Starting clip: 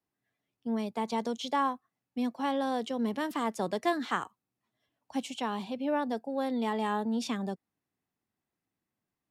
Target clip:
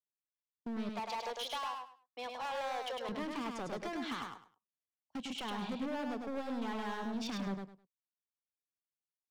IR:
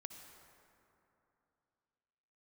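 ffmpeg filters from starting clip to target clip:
-filter_complex "[0:a]lowpass=5k,agate=range=-33dB:threshold=-45dB:ratio=16:detection=peak,asettb=1/sr,asplit=3[a][b][c];[a]atrim=end=0.894[d];[b]atrim=start=0.89:end=3.09,asetpts=PTS-STARTPTS,afade=t=in:d=0.004:c=qsin,afade=t=out:st=2.196:d=0.004:c=qsin,highpass=f=560:w=0.5412,highpass=f=560:w=1.3066[e];[c]atrim=start=3.086[f];[d][e]acrossfade=d=0.004:c1=hsin:c2=qsin[g];[g][f]acrossfade=d=0.004:c1=qsin:c2=hsin,acompressor=threshold=-33dB:ratio=6,asoftclip=type=hard:threshold=-39dB,aecho=1:1:103|206|309:0.631|0.139|0.0305,volume=2dB"

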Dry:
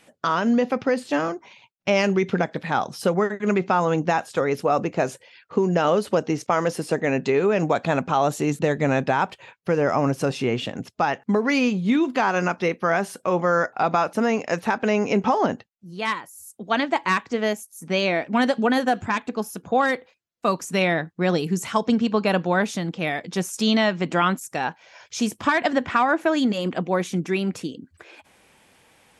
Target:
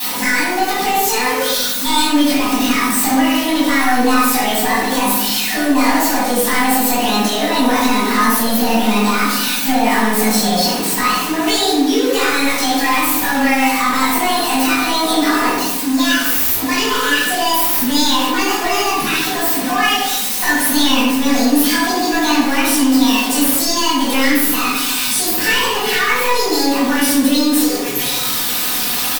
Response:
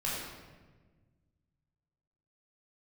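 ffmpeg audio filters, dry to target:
-filter_complex "[0:a]aeval=exprs='val(0)+0.5*0.0531*sgn(val(0))':c=same,highpass=90,equalizer=f=290:t=o:w=1.8:g=-4,aecho=1:1:6.3:0.65,adynamicequalizer=threshold=0.00501:dfrequency=4600:dqfactor=4.7:tfrequency=4600:tqfactor=4.7:attack=5:release=100:ratio=0.375:range=2:mode=cutabove:tftype=bell,asplit=2[a][b];[b]acompressor=threshold=-25dB:ratio=6,volume=1dB[c];[a][c]amix=inputs=2:normalize=0,crystalizer=i=4.5:c=0,asetrate=68011,aresample=44100,atempo=0.64842,asoftclip=type=tanh:threshold=-13dB,asplit=2[d][e];[e]adelay=72,lowpass=f=2k:p=1,volume=-6dB,asplit=2[f][g];[g]adelay=72,lowpass=f=2k:p=1,volume=0.46,asplit=2[h][i];[i]adelay=72,lowpass=f=2k:p=1,volume=0.46,asplit=2[j][k];[k]adelay=72,lowpass=f=2k:p=1,volume=0.46,asplit=2[l][m];[m]adelay=72,lowpass=f=2k:p=1,volume=0.46,asplit=2[n][o];[o]adelay=72,lowpass=f=2k:p=1,volume=0.46[p];[d][f][h][j][l][n][p]amix=inputs=7:normalize=0[q];[1:a]atrim=start_sample=2205,asetrate=70560,aresample=44100[r];[q][r]afir=irnorm=-1:irlink=0"

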